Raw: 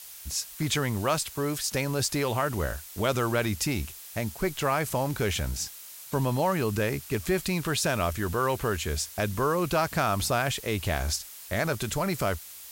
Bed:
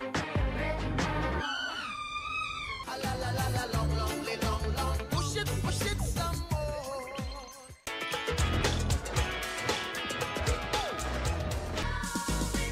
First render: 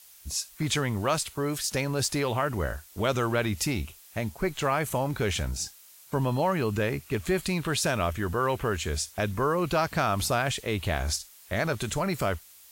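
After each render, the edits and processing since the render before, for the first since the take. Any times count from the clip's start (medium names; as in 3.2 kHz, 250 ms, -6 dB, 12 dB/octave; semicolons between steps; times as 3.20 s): noise print and reduce 8 dB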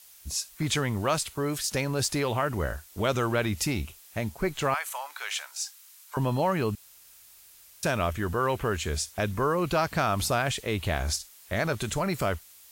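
4.74–6.17 s: high-pass 890 Hz 24 dB/octave; 6.75–7.83 s: room tone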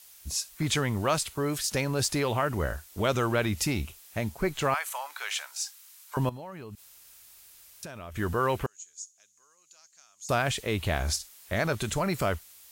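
6.29–8.16 s: compression 12:1, threshold -37 dBFS; 8.66–10.29 s: band-pass filter 6.7 kHz, Q 13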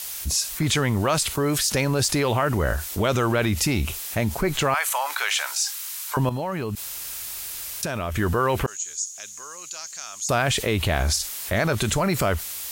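in parallel at 0 dB: peak limiter -23 dBFS, peak gain reduction 9 dB; on the sum: level flattener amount 50%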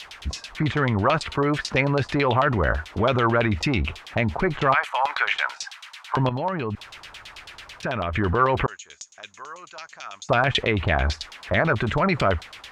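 one-sided clip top -16 dBFS; LFO low-pass saw down 9.1 Hz 790–3900 Hz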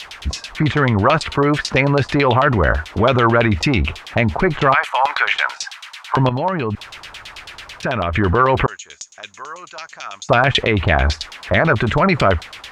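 trim +6.5 dB; peak limiter -3 dBFS, peak gain reduction 2.5 dB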